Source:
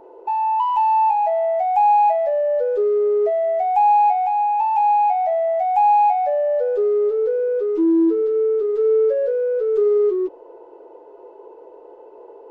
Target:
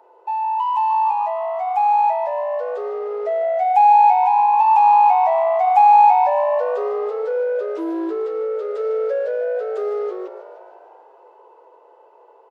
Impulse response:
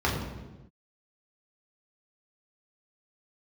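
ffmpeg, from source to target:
-filter_complex "[0:a]highpass=850,dynaudnorm=f=560:g=11:m=7.5dB,asplit=8[a][b][c][d][e][f][g][h];[b]adelay=152,afreqshift=56,volume=-12.5dB[i];[c]adelay=304,afreqshift=112,volume=-16.7dB[j];[d]adelay=456,afreqshift=168,volume=-20.8dB[k];[e]adelay=608,afreqshift=224,volume=-25dB[l];[f]adelay=760,afreqshift=280,volume=-29.1dB[m];[g]adelay=912,afreqshift=336,volume=-33.3dB[n];[h]adelay=1064,afreqshift=392,volume=-37.4dB[o];[a][i][j][k][l][m][n][o]amix=inputs=8:normalize=0,asplit=2[p][q];[1:a]atrim=start_sample=2205[r];[q][r]afir=irnorm=-1:irlink=0,volume=-31dB[s];[p][s]amix=inputs=2:normalize=0"

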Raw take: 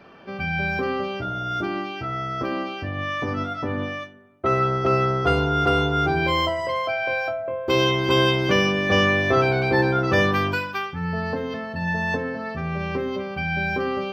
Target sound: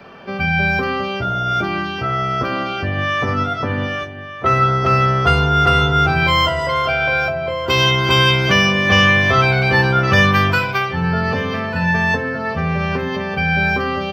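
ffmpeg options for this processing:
-filter_complex "[0:a]equalizer=f=310:w=6.4:g=-9,acrossover=split=220|870|4200[a][b][c][d];[b]acompressor=threshold=-33dB:ratio=6[e];[a][e][c][d]amix=inputs=4:normalize=0,asplit=2[f][g];[g]adelay=1195,lowpass=f=3.6k:p=1,volume=-12.5dB,asplit=2[h][i];[i]adelay=1195,lowpass=f=3.6k:p=1,volume=0.32,asplit=2[j][k];[k]adelay=1195,lowpass=f=3.6k:p=1,volume=0.32[l];[f][h][j][l]amix=inputs=4:normalize=0,volume=8.5dB"

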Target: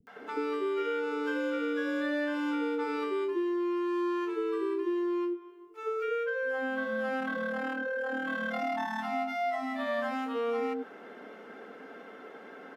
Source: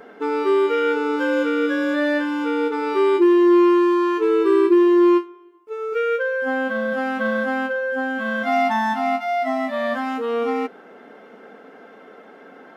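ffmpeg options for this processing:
-filter_complex "[0:a]asettb=1/sr,asplit=3[a][b][c];[a]atrim=end=7.134[d];[b]atrim=start=7.13:end=8.92,asetpts=PTS-STARTPTS,afade=t=in:d=0.004:c=qsin,afade=t=out:st=1.786:d=0.004:c=qsin,tremolo=f=38:d=0.667[e];[c]atrim=start=8.916[f];[d][e]acrossfade=d=0.004:c1=hsin:c2=qsin[g];[g][f]acrossfade=d=0.004:c1=qsin:c2=hsin,acompressor=threshold=-26dB:ratio=10,acrossover=split=170|670[h][i][j];[j]adelay=70[k];[i]adelay=160[l];[h][l][k]amix=inputs=3:normalize=0,volume=-1.5dB"

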